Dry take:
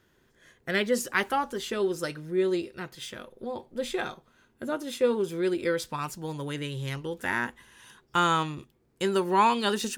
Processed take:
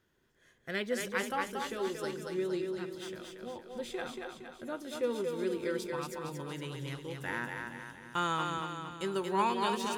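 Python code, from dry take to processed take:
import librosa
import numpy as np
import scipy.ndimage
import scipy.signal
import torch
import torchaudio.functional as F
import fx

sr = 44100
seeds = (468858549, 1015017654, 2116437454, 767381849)

y = fx.echo_split(x, sr, split_hz=310.0, low_ms=324, high_ms=231, feedback_pct=52, wet_db=-4.0)
y = y * 10.0 ** (-8.5 / 20.0)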